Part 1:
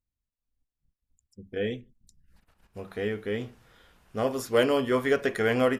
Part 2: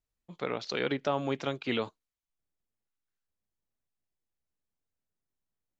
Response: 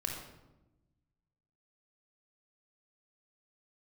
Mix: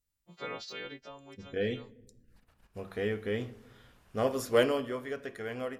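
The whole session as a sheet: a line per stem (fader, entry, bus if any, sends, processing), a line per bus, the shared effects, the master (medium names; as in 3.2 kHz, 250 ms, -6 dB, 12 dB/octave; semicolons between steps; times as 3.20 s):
4.59 s -3 dB -> 5.01 s -14.5 dB, 0.00 s, send -16 dB, none
-6.0 dB, 0.00 s, no send, partials quantised in pitch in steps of 2 st; de-esser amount 80%; auto duck -14 dB, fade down 0.65 s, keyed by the first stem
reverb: on, RT60 1.0 s, pre-delay 25 ms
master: none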